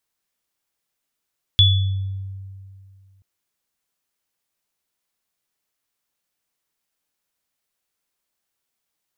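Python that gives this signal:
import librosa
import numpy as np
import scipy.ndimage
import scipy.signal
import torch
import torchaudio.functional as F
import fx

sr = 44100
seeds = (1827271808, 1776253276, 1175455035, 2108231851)

y = fx.additive_free(sr, length_s=1.63, hz=96.6, level_db=-11.5, upper_db=(2.5,), decay_s=2.34, upper_decays_s=(0.58,), upper_hz=(3430.0,))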